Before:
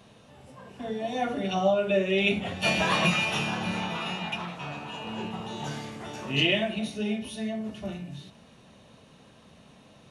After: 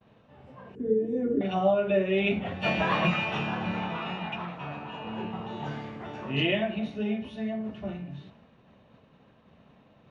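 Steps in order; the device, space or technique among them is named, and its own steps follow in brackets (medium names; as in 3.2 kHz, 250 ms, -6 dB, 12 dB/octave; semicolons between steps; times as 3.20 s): hearing-loss simulation (low-pass 2.3 kHz 12 dB/octave; expander -50 dBFS); 0.75–1.41 s: FFT filter 140 Hz 0 dB, 450 Hz +11 dB, 690 Hz -27 dB, 1.7 kHz -15 dB, 2.9 kHz -22 dB, 4.8 kHz -22 dB, 7.3 kHz +1 dB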